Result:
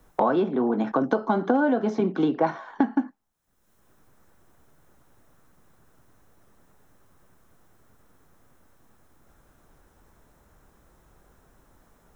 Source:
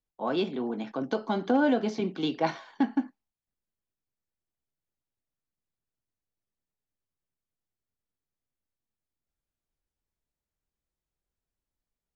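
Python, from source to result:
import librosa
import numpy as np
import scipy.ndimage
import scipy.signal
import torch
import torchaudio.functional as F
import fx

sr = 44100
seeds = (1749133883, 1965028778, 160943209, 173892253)

y = fx.high_shelf_res(x, sr, hz=1900.0, db=-9.0, q=1.5)
y = fx.notch(y, sr, hz=4600.0, q=8.1)
y = fx.band_squash(y, sr, depth_pct=100)
y = F.gain(torch.from_numpy(y), 4.5).numpy()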